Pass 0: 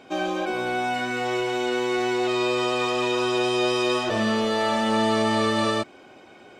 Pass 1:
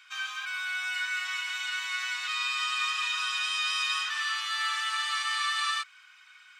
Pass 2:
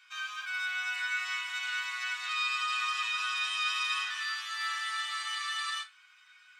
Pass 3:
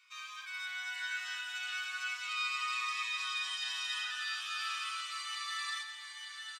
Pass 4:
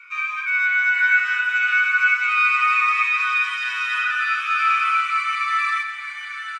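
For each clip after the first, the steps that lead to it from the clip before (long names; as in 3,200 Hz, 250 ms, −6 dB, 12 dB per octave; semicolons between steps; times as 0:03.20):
Butterworth high-pass 1,200 Hz 48 dB per octave
resonators tuned to a chord E2 major, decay 0.21 s; level +5 dB
on a send: single-tap delay 898 ms −6 dB; on the sum: phaser whose notches keep moving one way falling 0.37 Hz; level −3 dB
flat-topped bell 1,600 Hz +14 dB; hollow resonant body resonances 1,400/2,300 Hz, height 15 dB, ringing for 25 ms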